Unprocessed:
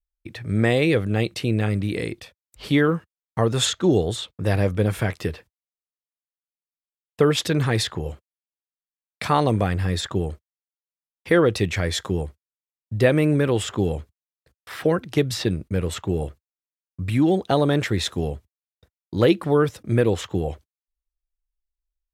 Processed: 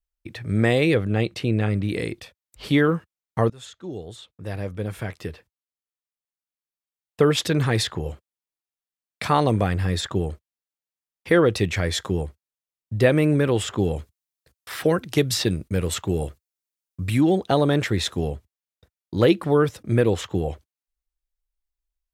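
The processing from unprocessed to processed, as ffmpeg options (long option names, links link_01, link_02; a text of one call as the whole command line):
ffmpeg -i in.wav -filter_complex "[0:a]asettb=1/sr,asplit=3[link_01][link_02][link_03];[link_01]atrim=end=0.944[link_04];[link_02]atrim=start=0.94:end=1.89,asetpts=PTS-STARTPTS,afade=type=in:duration=0.004:curve=qsin,afade=type=out:start_time=0.946:duration=0.004:curve=qsin,highshelf=frequency=5700:gain=-8.5[link_05];[link_03]atrim=start=1.886[link_06];[link_04][link_05]acrossfade=duration=0.004:curve1=hsin:curve2=qsin[link_07];[link_07][link_06]acrossfade=duration=0.004:curve1=qsin:curve2=hsin,asettb=1/sr,asplit=3[link_08][link_09][link_10];[link_08]atrim=end=13.964[link_11];[link_09]atrim=start=13.96:end=17.21,asetpts=PTS-STARTPTS,afade=type=in:duration=0.004:curve=qsin,afade=type=out:start_time=3.246:duration=0.004:curve=qsin,highshelf=frequency=3900:gain=7.5[link_12];[link_10]atrim=start=17.206[link_13];[link_11][link_12]acrossfade=duration=0.004:curve1=hsin:curve2=qsin[link_14];[link_14][link_13]acrossfade=duration=0.004:curve1=qsin:curve2=hsin,asplit=2[link_15][link_16];[link_15]atrim=end=3.5,asetpts=PTS-STARTPTS,afade=type=out:start_time=3.496:duration=0.004:curve=hsin:silence=0.0630957[link_17];[link_16]atrim=start=3.5,asetpts=PTS-STARTPTS,afade=type=in:duration=3.74:silence=0.0630957[link_18];[link_17][link_18]concat=n=2:v=0:a=1" out.wav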